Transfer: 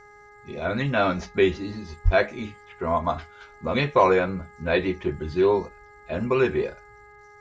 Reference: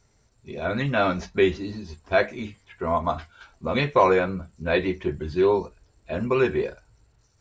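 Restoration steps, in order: de-hum 414.1 Hz, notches 5; 2.04–2.16 HPF 140 Hz 24 dB/oct

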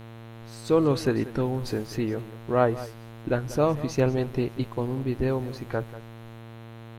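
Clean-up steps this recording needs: de-hum 114.4 Hz, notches 37; inverse comb 0.189 s -16 dB

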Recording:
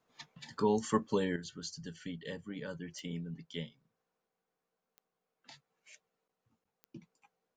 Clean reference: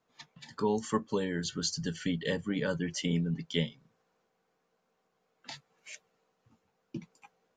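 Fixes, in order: de-click; interpolate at 6.28/6.64, 14 ms; gain 0 dB, from 1.36 s +10.5 dB

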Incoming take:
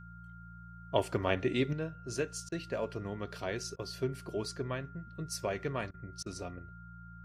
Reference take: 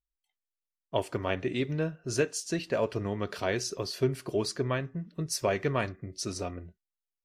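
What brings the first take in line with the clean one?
de-hum 57.6 Hz, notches 3; notch 1400 Hz, Q 30; interpolate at 2.49/3.76/5.91/6.23, 29 ms; gain 0 dB, from 1.73 s +7 dB

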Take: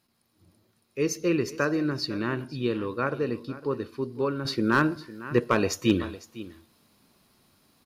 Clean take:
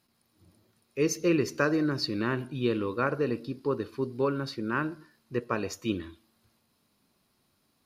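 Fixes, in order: clip repair -11 dBFS; inverse comb 0.505 s -17 dB; gain 0 dB, from 4.45 s -8 dB

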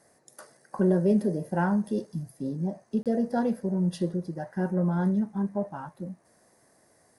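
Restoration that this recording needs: interpolate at 3.03, 27 ms

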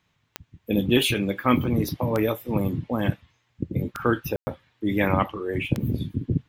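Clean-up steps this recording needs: de-click; room tone fill 4.36–4.47

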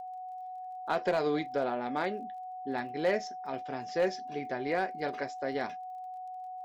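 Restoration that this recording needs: clip repair -20.5 dBFS; de-click; notch 740 Hz, Q 30

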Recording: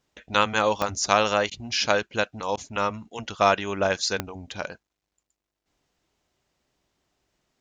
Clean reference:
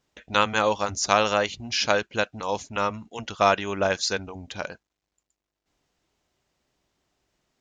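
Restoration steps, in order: de-click; interpolate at 1.5/2.56, 12 ms

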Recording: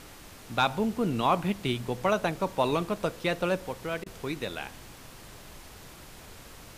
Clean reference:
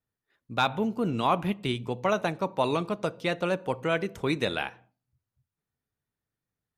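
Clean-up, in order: interpolate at 4.04, 21 ms; noise print and reduce 30 dB; gain correction +6.5 dB, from 3.66

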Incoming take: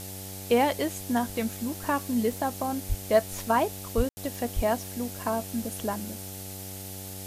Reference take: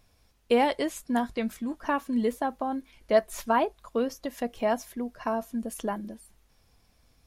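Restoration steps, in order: de-hum 95.6 Hz, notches 9; 2.88–3 HPF 140 Hz 24 dB/oct; 3.96–4.08 HPF 140 Hz 24 dB/oct; 4.55–4.67 HPF 140 Hz 24 dB/oct; room tone fill 4.09–4.17; noise print and reduce 24 dB

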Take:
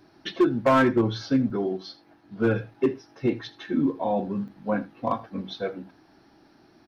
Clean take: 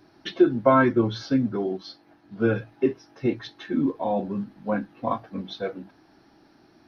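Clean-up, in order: clip repair -14 dBFS; interpolate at 1.5/2.74/4.48, 4.1 ms; inverse comb 80 ms -18.5 dB

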